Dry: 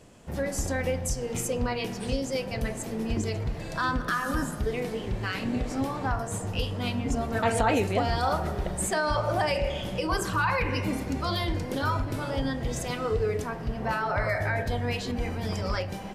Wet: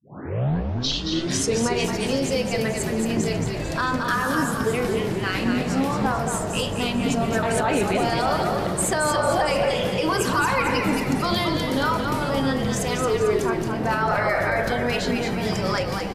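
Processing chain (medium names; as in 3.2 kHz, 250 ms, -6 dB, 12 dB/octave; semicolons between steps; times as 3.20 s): tape start-up on the opening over 1.70 s; high-pass 130 Hz 24 dB/octave; peak limiter -21 dBFS, peak gain reduction 10 dB; on a send: frequency-shifting echo 223 ms, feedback 48%, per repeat -57 Hz, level -5 dB; on the sum: trim +7 dB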